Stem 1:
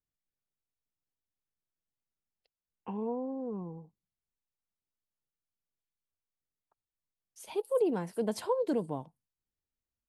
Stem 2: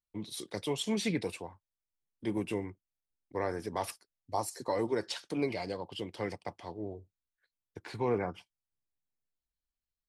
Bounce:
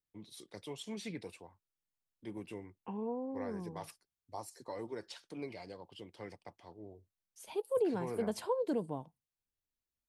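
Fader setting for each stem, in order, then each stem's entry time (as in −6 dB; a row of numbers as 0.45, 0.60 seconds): −3.5, −11.0 decibels; 0.00, 0.00 seconds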